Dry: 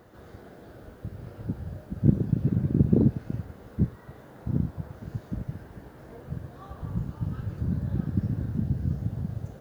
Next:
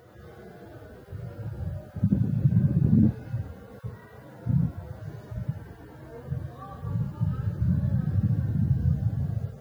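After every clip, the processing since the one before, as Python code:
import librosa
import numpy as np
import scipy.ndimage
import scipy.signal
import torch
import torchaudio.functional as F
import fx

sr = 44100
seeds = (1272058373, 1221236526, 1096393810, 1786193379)

y = fx.hpss_only(x, sr, part='harmonic')
y = scipy.signal.sosfilt(scipy.signal.butter(2, 60.0, 'highpass', fs=sr, output='sos'), y)
y = y * librosa.db_to_amplitude(5.0)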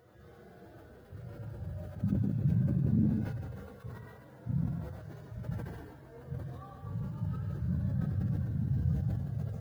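y = x + 10.0 ** (-7.0 / 20.0) * np.pad(x, (int(145 * sr / 1000.0), 0))[:len(x)]
y = fx.sustainer(y, sr, db_per_s=39.0)
y = y * librosa.db_to_amplitude(-9.0)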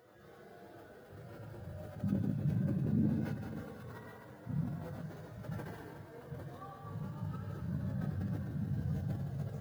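y = fx.reverse_delay_fb(x, sr, ms=241, feedback_pct=44, wet_db=-9.5)
y = fx.highpass(y, sr, hz=260.0, slope=6)
y = fx.doubler(y, sr, ms=20.0, db=-11.5)
y = y * librosa.db_to_amplitude(1.0)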